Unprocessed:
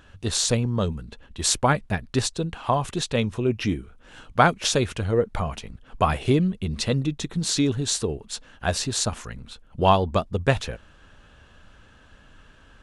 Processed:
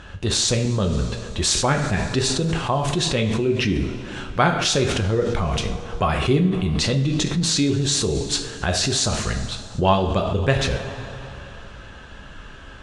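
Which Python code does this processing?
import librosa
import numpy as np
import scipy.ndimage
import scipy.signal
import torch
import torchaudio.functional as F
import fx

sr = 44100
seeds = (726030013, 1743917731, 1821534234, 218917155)

p1 = scipy.signal.sosfilt(scipy.signal.butter(2, 7700.0, 'lowpass', fs=sr, output='sos'), x)
p2 = fx.rev_double_slope(p1, sr, seeds[0], early_s=0.47, late_s=3.0, knee_db=-18, drr_db=3.5)
p3 = fx.over_compress(p2, sr, threshold_db=-31.0, ratio=-1.0)
p4 = p2 + (p3 * librosa.db_to_amplitude(1.0))
y = fx.dynamic_eq(p4, sr, hz=890.0, q=1.1, threshold_db=-31.0, ratio=4.0, max_db=-4)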